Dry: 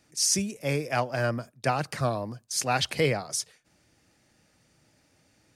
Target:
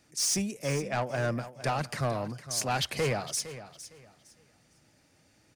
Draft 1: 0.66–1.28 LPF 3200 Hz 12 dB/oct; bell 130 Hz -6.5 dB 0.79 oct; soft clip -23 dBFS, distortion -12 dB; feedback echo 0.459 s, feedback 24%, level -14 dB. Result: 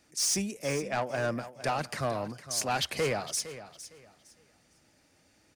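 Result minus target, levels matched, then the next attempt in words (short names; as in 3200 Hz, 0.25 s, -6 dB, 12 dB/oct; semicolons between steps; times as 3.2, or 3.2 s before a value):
125 Hz band -4.5 dB
0.66–1.28 LPF 3200 Hz 12 dB/oct; soft clip -23 dBFS, distortion -12 dB; feedback echo 0.459 s, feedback 24%, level -14 dB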